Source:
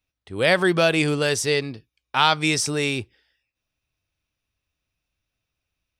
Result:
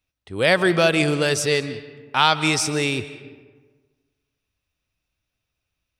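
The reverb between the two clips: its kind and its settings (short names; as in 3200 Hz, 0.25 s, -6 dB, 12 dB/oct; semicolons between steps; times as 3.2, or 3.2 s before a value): digital reverb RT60 1.4 s, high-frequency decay 0.55×, pre-delay 0.11 s, DRR 13 dB; gain +1 dB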